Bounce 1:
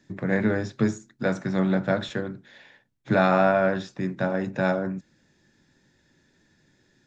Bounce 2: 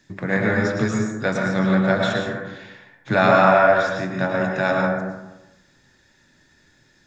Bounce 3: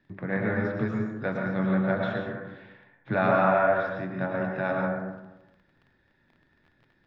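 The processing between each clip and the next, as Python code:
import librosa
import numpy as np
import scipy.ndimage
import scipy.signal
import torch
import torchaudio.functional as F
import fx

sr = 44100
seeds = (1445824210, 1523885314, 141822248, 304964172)

y1 = fx.peak_eq(x, sr, hz=250.0, db=-7.5, octaves=2.9)
y1 = fx.rev_plate(y1, sr, seeds[0], rt60_s=1.0, hf_ratio=0.4, predelay_ms=95, drr_db=0.0)
y1 = y1 * librosa.db_to_amplitude(6.5)
y2 = fx.dmg_crackle(y1, sr, seeds[1], per_s=28.0, level_db=-34.0)
y2 = fx.air_absorb(y2, sr, metres=390.0)
y2 = y2 * librosa.db_to_amplitude(-6.0)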